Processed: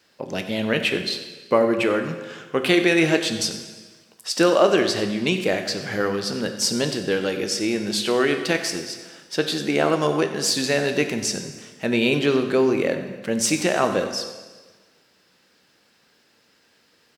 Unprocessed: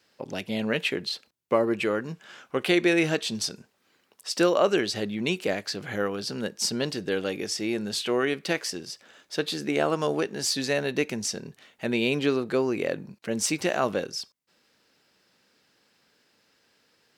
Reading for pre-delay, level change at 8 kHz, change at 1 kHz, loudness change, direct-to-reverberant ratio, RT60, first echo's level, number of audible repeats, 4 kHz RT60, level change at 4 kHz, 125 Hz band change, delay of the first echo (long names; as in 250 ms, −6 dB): 5 ms, +5.5 dB, +5.5 dB, +5.5 dB, 6.0 dB, 1.4 s, −16.0 dB, 1, 1.3 s, +5.5 dB, +5.5 dB, 92 ms